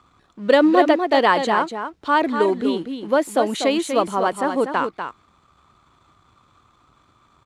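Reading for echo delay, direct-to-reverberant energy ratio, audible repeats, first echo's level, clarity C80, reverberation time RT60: 244 ms, no reverb audible, 1, −7.5 dB, no reverb audible, no reverb audible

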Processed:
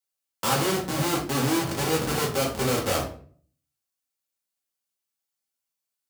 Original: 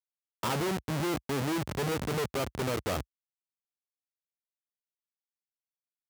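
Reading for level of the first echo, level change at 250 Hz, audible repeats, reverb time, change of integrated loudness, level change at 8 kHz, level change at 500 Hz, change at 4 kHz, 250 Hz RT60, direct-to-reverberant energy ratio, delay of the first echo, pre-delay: no echo audible, +6.0 dB, no echo audible, 0.50 s, +7.0 dB, +11.5 dB, +6.0 dB, +9.0 dB, 0.60 s, −3.5 dB, no echo audible, 3 ms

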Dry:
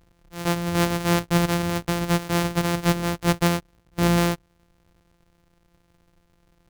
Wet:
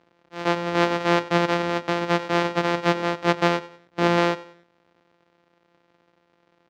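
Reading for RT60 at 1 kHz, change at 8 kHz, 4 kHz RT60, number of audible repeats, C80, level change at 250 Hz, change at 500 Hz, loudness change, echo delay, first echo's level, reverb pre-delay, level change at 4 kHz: no reverb audible, −10.5 dB, no reverb audible, 3, no reverb audible, −2.0 dB, +4.0 dB, +0.5 dB, 95 ms, −18.0 dB, no reverb audible, 0.0 dB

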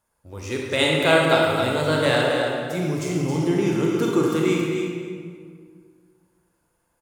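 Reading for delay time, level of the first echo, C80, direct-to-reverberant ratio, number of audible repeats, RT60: 270 ms, −7.5 dB, 0.0 dB, −3.0 dB, 1, 1.9 s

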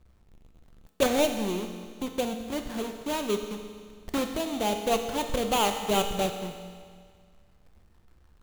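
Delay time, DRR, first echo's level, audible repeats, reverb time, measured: no echo audible, 5.0 dB, no echo audible, no echo audible, 1.9 s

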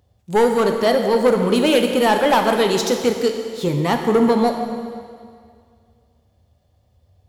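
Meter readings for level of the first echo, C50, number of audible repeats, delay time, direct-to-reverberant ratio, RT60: no echo audible, 5.5 dB, no echo audible, no echo audible, 4.0 dB, 2.1 s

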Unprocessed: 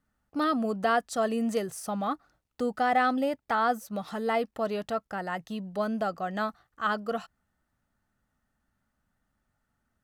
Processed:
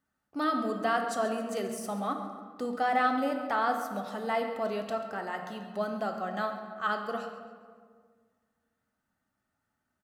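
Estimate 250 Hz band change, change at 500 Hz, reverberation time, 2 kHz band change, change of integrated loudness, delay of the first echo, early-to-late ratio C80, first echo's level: −3.5 dB, −2.0 dB, 1.8 s, −1.5 dB, −2.0 dB, 136 ms, 7.0 dB, −14.0 dB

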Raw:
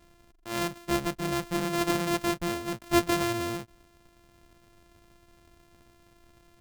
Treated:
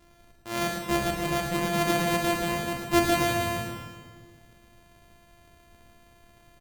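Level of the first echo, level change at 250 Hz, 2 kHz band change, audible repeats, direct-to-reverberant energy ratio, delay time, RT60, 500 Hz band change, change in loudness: −6.5 dB, +1.0 dB, +4.5 dB, 1, 0.0 dB, 109 ms, 1.7 s, +3.0 dB, +2.5 dB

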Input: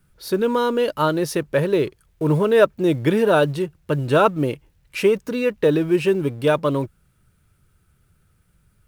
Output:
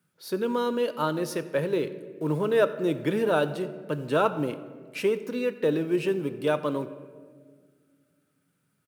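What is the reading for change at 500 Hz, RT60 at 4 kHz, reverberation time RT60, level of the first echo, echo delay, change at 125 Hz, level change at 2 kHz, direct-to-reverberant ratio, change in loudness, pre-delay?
−7.0 dB, 1.0 s, 1.7 s, −22.0 dB, 89 ms, −10.0 dB, −7.5 dB, 11.0 dB, −7.5 dB, 4 ms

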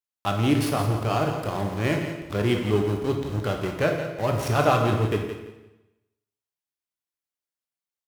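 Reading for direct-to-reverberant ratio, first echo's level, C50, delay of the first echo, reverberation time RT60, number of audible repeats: 2.0 dB, −10.0 dB, 4.0 dB, 170 ms, 1.0 s, 2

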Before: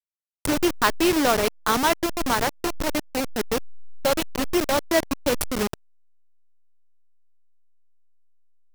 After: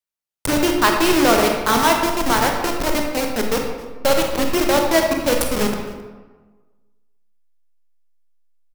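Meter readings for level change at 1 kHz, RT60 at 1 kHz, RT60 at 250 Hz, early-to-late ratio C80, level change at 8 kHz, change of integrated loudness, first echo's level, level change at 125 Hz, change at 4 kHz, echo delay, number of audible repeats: +6.0 dB, 1.3 s, 1.4 s, 5.5 dB, +4.5 dB, +5.5 dB, −20.0 dB, +5.5 dB, +5.0 dB, 265 ms, 1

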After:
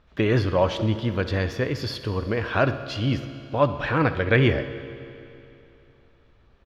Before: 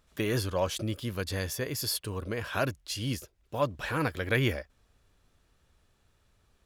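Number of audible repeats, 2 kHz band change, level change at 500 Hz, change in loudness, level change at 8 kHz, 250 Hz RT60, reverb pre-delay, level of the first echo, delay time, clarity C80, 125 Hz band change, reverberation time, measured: 2, +7.0 dB, +9.0 dB, +7.5 dB, below −10 dB, 2.9 s, 15 ms, −17.0 dB, 65 ms, 12.0 dB, +9.0 dB, 2.9 s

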